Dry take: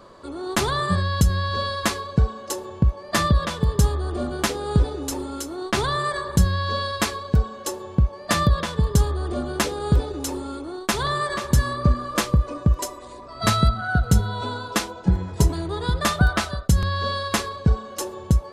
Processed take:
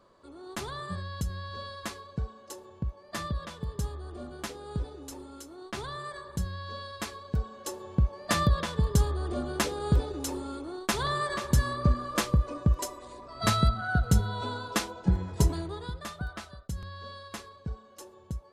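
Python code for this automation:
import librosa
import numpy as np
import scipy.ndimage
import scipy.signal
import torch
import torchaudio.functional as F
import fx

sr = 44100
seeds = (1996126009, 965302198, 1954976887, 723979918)

y = fx.gain(x, sr, db=fx.line((6.88, -14.5), (8.06, -5.5), (15.57, -5.5), (16.05, -18.0)))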